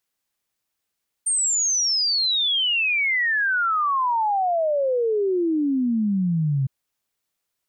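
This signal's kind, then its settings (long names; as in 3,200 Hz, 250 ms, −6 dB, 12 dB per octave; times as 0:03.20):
exponential sine sweep 8,900 Hz → 130 Hz 5.41 s −18.5 dBFS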